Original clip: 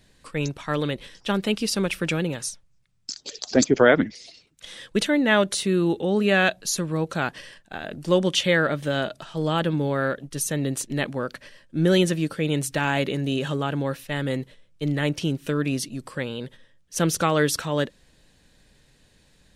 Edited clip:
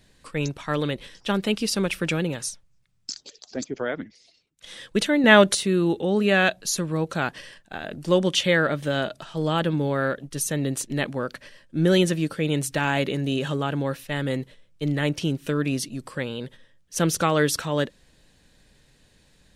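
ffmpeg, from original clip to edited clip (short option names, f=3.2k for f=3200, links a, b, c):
-filter_complex "[0:a]asplit=5[a][b][c][d][e];[a]atrim=end=3.32,asetpts=PTS-STARTPTS,afade=t=out:st=3.16:d=0.16:silence=0.237137[f];[b]atrim=start=3.32:end=4.56,asetpts=PTS-STARTPTS,volume=-12.5dB[g];[c]atrim=start=4.56:end=5.242,asetpts=PTS-STARTPTS,afade=t=in:d=0.16:silence=0.237137[h];[d]atrim=start=5.238:end=5.552,asetpts=PTS-STARTPTS,volume=5.5dB[i];[e]atrim=start=5.548[j];[f][g][h]concat=n=3:v=0:a=1[k];[k][i]acrossfade=d=0.004:c1=hsin:c2=hsin[l];[l][j]acrossfade=d=0.004:c1=hsin:c2=hsin"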